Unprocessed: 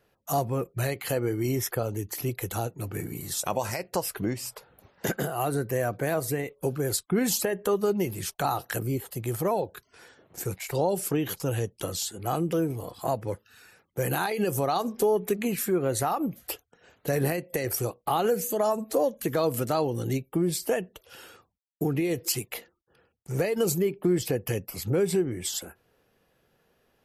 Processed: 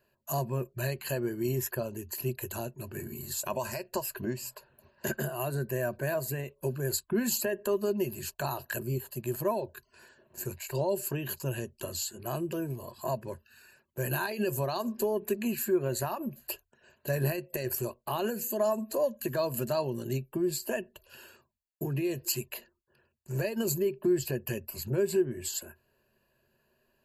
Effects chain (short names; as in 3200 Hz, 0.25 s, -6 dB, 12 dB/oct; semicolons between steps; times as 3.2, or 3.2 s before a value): ripple EQ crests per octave 1.4, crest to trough 13 dB; gain -6.5 dB